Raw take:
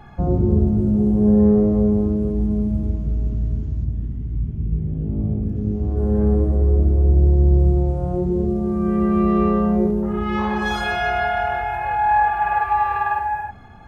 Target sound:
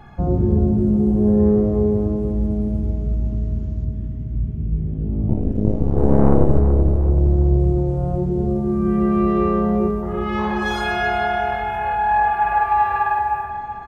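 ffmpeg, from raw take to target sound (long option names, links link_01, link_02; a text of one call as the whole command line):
ffmpeg -i in.wav -filter_complex "[0:a]asettb=1/sr,asplit=3[link_01][link_02][link_03];[link_01]atrim=end=5.284[link_04];[link_02]atrim=start=5.28:end=6.59,asetpts=PTS-STARTPTS,afade=type=in:duration=0.004:curve=qsin,afade=type=out:start_time=1.306:duration=0.004:curve=qsin,aeval=exprs='0.447*(cos(1*acos(clip(val(0)/0.447,-1,1)))-cos(1*PI/2))+0.224*(cos(4*acos(clip(val(0)/0.447,-1,1)))-cos(4*PI/2))':channel_layout=same[link_05];[link_03]atrim=start=6.586[link_06];[link_04][link_05]acrossfade=duration=0.004:curve1=hsin:curve2=qsin[link_07];[link_07][link_06]acrossfade=duration=0.004:curve1=qsin:curve2=hsin,asplit=2[link_08][link_09];[link_09]adelay=379,lowpass=frequency=2900:poles=1,volume=-9dB,asplit=2[link_10][link_11];[link_11]adelay=379,lowpass=frequency=2900:poles=1,volume=0.5,asplit=2[link_12][link_13];[link_13]adelay=379,lowpass=frequency=2900:poles=1,volume=0.5,asplit=2[link_14][link_15];[link_15]adelay=379,lowpass=frequency=2900:poles=1,volume=0.5,asplit=2[link_16][link_17];[link_17]adelay=379,lowpass=frequency=2900:poles=1,volume=0.5,asplit=2[link_18][link_19];[link_19]adelay=379,lowpass=frequency=2900:poles=1,volume=0.5[link_20];[link_08][link_10][link_12][link_14][link_16][link_18][link_20]amix=inputs=7:normalize=0" out.wav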